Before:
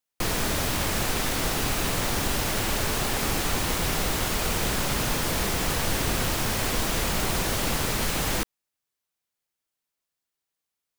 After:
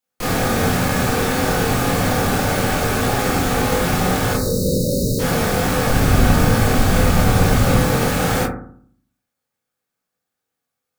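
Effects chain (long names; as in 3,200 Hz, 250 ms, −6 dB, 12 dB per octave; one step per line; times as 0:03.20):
0:04.34–0:05.20: time-frequency box erased 610–3,700 Hz
0:05.90–0:07.79: low-shelf EQ 120 Hz +11.5 dB
convolution reverb RT60 0.55 s, pre-delay 21 ms, DRR −9 dB
level −1 dB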